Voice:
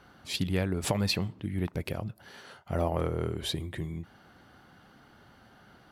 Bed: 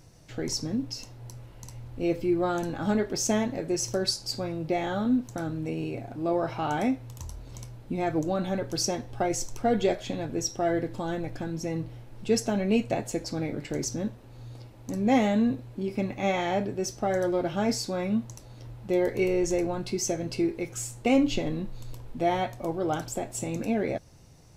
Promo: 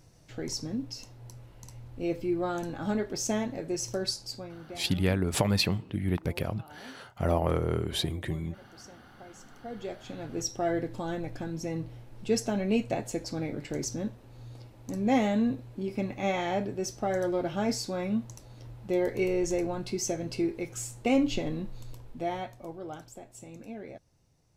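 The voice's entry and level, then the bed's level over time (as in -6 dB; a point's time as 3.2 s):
4.50 s, +2.5 dB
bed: 4.19 s -4 dB
5.05 s -23 dB
9.33 s -23 dB
10.45 s -2.5 dB
21.77 s -2.5 dB
23.16 s -14.5 dB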